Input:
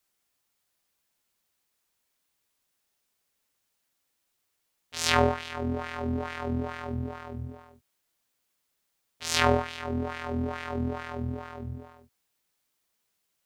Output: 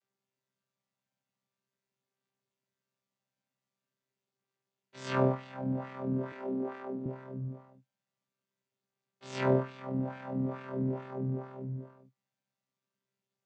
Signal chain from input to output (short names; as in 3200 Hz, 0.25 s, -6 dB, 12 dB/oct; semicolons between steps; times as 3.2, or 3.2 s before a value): chord vocoder bare fifth, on C3; 6.32–7.06 HPF 220 Hz 24 dB/oct; gain -2 dB